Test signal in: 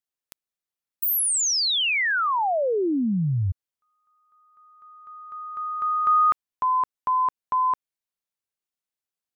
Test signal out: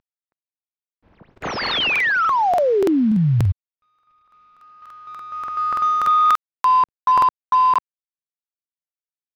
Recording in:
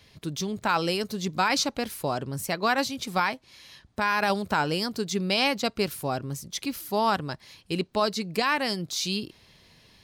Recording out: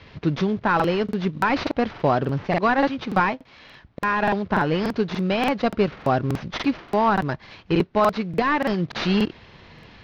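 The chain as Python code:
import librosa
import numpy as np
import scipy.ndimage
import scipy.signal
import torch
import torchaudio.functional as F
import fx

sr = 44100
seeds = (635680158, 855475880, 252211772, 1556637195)

y = fx.cvsd(x, sr, bps=32000)
y = scipy.signal.sosfilt(scipy.signal.butter(2, 2400.0, 'lowpass', fs=sr, output='sos'), y)
y = fx.rider(y, sr, range_db=5, speed_s=0.5)
y = fx.buffer_crackle(y, sr, first_s=0.75, period_s=0.29, block=2048, kind='repeat')
y = F.gain(torch.from_numpy(y), 7.0).numpy()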